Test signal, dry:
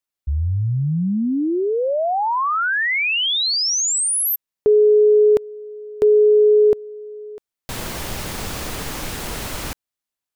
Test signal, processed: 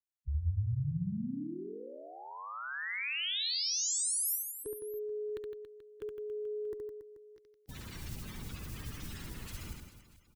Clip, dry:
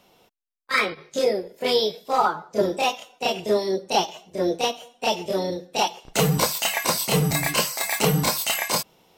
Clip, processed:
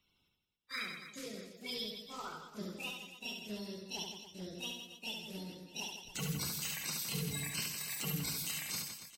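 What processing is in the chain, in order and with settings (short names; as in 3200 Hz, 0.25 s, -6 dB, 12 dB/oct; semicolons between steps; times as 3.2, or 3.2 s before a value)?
bin magnitudes rounded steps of 30 dB; passive tone stack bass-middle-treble 6-0-2; reverse bouncing-ball echo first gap 70 ms, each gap 1.3×, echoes 5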